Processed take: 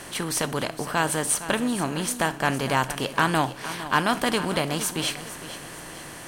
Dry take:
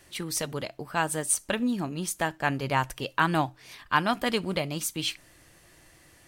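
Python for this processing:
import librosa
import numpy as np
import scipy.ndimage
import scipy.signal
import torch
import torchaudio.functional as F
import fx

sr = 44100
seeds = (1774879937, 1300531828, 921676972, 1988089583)

y = fx.bin_compress(x, sr, power=0.6)
y = fx.echo_feedback(y, sr, ms=461, feedback_pct=42, wet_db=-13.5)
y = np.clip(y, -10.0 ** (-9.5 / 20.0), 10.0 ** (-9.5 / 20.0))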